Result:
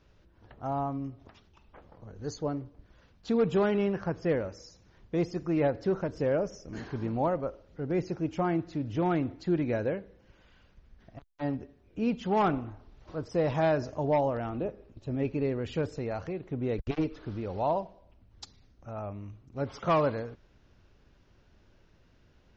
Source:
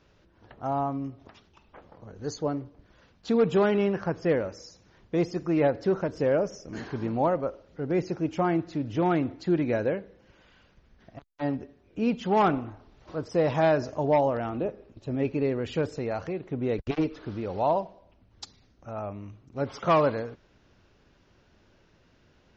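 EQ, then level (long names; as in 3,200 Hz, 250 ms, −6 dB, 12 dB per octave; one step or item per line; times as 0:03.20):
low-shelf EQ 89 Hz +10 dB
−4.0 dB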